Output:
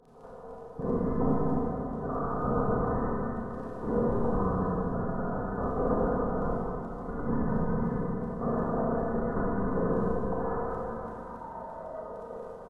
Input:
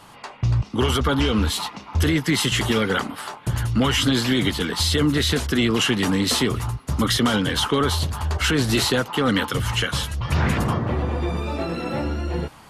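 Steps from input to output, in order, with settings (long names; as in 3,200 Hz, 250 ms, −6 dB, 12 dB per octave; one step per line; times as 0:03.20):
Butterworth high-pass 2,400 Hz 48 dB per octave
comb filter 3.9 ms, depth 73%
brickwall limiter −17 dBFS, peak gain reduction 8.5 dB
voice inversion scrambler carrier 3,300 Hz
surface crackle 13 per second −46 dBFS
four-comb reverb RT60 3.2 s, combs from 27 ms, DRR −7 dB
level −3.5 dB
AAC 32 kbit/s 32,000 Hz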